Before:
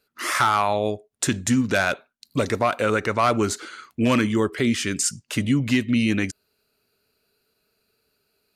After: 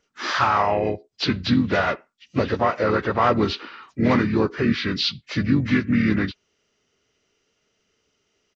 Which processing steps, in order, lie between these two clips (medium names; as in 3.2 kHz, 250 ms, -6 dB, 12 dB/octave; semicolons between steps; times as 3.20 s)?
knee-point frequency compression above 1.3 kHz 1.5:1; harmony voices -7 st -12 dB, -3 st -8 dB, +3 st -12 dB